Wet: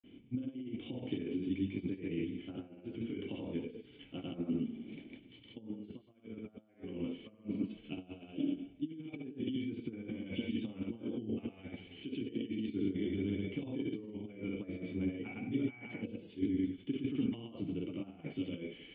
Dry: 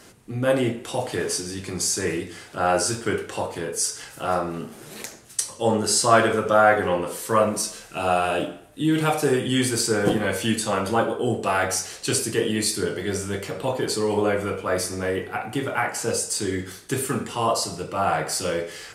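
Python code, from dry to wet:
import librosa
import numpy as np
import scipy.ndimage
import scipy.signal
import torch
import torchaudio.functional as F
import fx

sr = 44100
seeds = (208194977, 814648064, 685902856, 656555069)

y = fx.granulator(x, sr, seeds[0], grain_ms=132.0, per_s=20.0, spray_ms=100.0, spread_st=0)
y = fx.over_compress(y, sr, threshold_db=-30.0, ratio=-0.5)
y = fx.formant_cascade(y, sr, vowel='i')
y = y * 10.0 ** (2.0 / 20.0)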